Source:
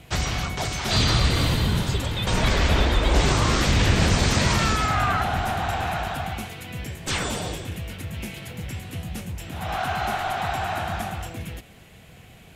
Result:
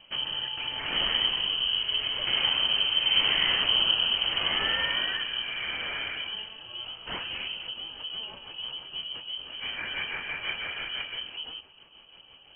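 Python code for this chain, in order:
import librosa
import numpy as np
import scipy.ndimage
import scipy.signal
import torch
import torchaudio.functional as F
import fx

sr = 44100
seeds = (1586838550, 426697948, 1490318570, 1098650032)

y = fx.self_delay(x, sr, depth_ms=0.15)
y = fx.rotary_switch(y, sr, hz=0.8, then_hz=6.0, switch_at_s=6.85)
y = fx.freq_invert(y, sr, carrier_hz=3100)
y = y * 10.0 ** (-4.5 / 20.0)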